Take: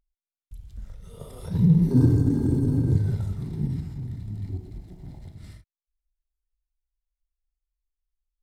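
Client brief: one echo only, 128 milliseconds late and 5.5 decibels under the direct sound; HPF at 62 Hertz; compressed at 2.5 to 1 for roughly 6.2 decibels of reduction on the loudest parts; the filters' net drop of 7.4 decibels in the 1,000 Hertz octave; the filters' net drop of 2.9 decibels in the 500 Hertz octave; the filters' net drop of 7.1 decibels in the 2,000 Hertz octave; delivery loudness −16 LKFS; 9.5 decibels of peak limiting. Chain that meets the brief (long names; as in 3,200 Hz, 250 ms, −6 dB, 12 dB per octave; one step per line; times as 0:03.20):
high-pass filter 62 Hz
parametric band 500 Hz −3 dB
parametric band 1,000 Hz −7 dB
parametric band 2,000 Hz −6.5 dB
downward compressor 2.5 to 1, threshold −23 dBFS
brickwall limiter −24 dBFS
single-tap delay 128 ms −5.5 dB
level +15.5 dB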